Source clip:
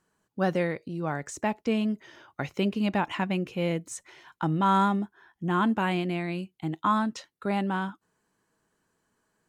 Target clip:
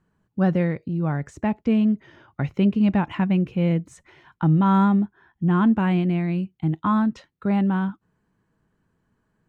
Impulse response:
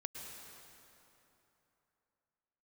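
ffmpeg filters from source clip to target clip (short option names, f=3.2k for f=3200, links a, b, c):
-af "bass=f=250:g=13,treble=f=4k:g=-12"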